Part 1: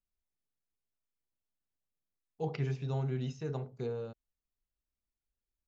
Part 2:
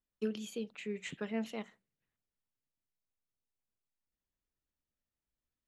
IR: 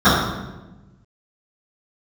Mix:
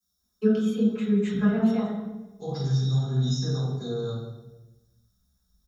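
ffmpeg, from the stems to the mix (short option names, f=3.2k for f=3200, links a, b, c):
-filter_complex "[0:a]alimiter=level_in=9.5dB:limit=-24dB:level=0:latency=1:release=27,volume=-9.5dB,aexciter=amount=8.8:drive=9.7:freq=4k,volume=-16.5dB,asplit=2[a][b];[b]volume=-4dB[c];[1:a]asubboost=boost=7.5:cutoff=120,aecho=1:1:4.7:0.56,adelay=200,volume=-2dB,asplit=2[d][e];[e]volume=-16.5dB[f];[2:a]atrim=start_sample=2205[g];[c][f]amix=inputs=2:normalize=0[h];[h][g]afir=irnorm=-1:irlink=0[i];[a][d][i]amix=inputs=3:normalize=0"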